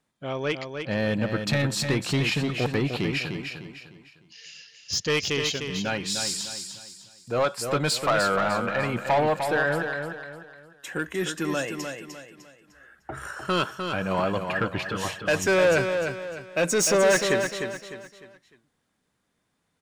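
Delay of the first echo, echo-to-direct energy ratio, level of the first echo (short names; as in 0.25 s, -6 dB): 0.302 s, -6.0 dB, -6.5 dB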